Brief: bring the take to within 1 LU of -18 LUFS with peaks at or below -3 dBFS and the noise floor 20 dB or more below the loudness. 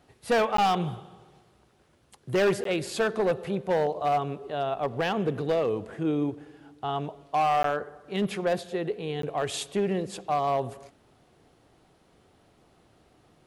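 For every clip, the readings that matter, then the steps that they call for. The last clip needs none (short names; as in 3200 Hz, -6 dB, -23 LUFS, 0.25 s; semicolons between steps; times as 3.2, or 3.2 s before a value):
clipped 1.5%; flat tops at -19.0 dBFS; dropouts 4; longest dropout 13 ms; loudness -28.0 LUFS; peak -19.0 dBFS; loudness target -18.0 LUFS
-> clip repair -19 dBFS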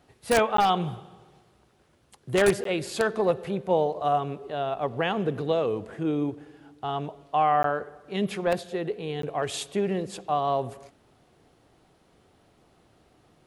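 clipped 0.0%; dropouts 4; longest dropout 13 ms
-> interpolate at 0.57/2.64/7.63/9.22, 13 ms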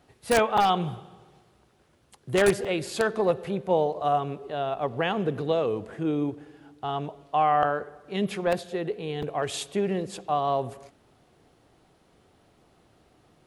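dropouts 0; loudness -27.0 LUFS; peak -8.5 dBFS; loudness target -18.0 LUFS
-> gain +9 dB; limiter -3 dBFS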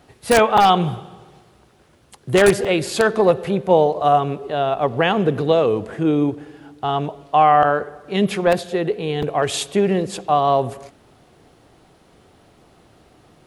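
loudness -18.5 LUFS; peak -3.0 dBFS; noise floor -54 dBFS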